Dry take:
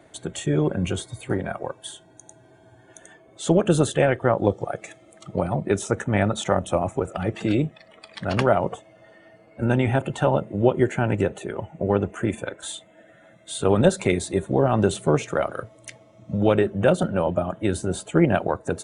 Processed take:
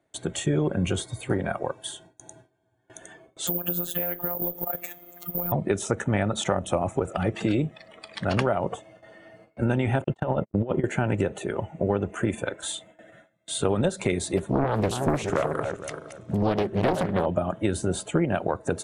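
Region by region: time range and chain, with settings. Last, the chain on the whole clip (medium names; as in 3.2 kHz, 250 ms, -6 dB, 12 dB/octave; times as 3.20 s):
3.47–5.52 s: compression 5:1, threshold -28 dBFS + robot voice 175 Hz + careless resampling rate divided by 3×, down filtered, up zero stuff
10.04–10.84 s: gate -31 dBFS, range -54 dB + low-pass 2.2 kHz 6 dB/octave + compressor with a negative ratio -23 dBFS, ratio -0.5
14.37–17.26 s: backward echo that repeats 233 ms, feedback 43%, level -10 dB + loudspeaker Doppler distortion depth 0.99 ms
whole clip: gate with hold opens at -42 dBFS; compression 6:1, threshold -21 dBFS; trim +1.5 dB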